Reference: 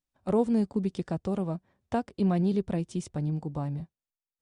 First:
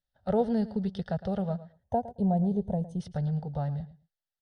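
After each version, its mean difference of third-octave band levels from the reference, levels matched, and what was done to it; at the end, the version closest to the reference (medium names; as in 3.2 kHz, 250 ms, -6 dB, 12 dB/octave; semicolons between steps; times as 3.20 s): 5.0 dB: time-frequency box 1.72–3.00 s, 1.1–6 kHz -19 dB; distance through air 53 m; static phaser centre 1.6 kHz, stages 8; feedback delay 110 ms, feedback 15%, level -16 dB; trim +4 dB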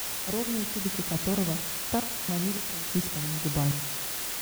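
18.0 dB: bass shelf 92 Hz +11.5 dB; random-step tremolo, depth 100%; word length cut 6-bit, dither triangular; filtered feedback delay 84 ms, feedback 48%, level -14.5 dB; trim +2.5 dB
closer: first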